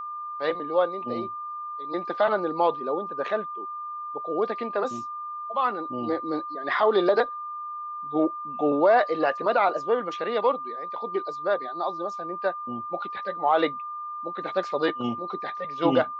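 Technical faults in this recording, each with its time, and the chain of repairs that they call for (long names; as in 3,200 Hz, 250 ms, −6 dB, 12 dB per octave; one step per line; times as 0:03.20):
whistle 1,200 Hz −32 dBFS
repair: notch filter 1,200 Hz, Q 30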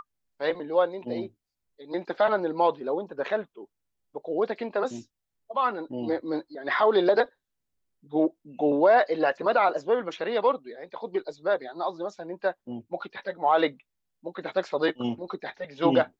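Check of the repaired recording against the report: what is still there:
none of them is left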